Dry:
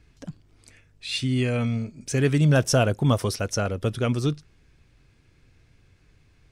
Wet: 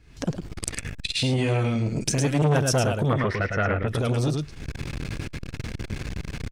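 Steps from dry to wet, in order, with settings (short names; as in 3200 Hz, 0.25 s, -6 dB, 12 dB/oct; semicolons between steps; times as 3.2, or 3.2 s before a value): recorder AGC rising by 73 dB/s; 1.37–2.42 comb 6.1 ms, depth 44%; 3.09–3.88 synth low-pass 1900 Hz, resonance Q 8.5; echo 0.107 s -5.5 dB; core saturation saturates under 830 Hz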